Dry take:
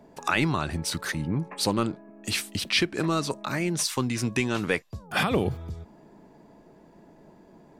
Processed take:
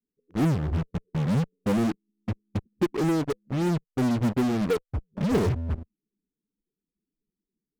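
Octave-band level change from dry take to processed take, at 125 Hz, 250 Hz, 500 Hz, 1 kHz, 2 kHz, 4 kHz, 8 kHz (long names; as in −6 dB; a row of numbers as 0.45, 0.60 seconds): +4.0, +3.5, +1.5, −4.5, −10.5, −13.5, −13.0 decibels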